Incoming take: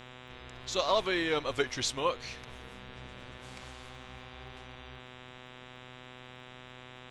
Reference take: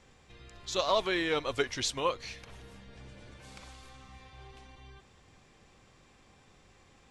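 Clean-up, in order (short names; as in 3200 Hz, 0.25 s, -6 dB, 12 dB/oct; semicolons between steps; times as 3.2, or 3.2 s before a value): de-click; de-hum 125.9 Hz, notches 31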